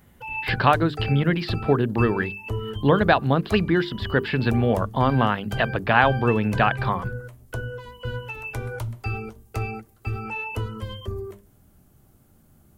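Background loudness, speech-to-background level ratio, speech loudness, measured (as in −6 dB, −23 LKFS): −32.0 LKFS, 10.0 dB, −22.0 LKFS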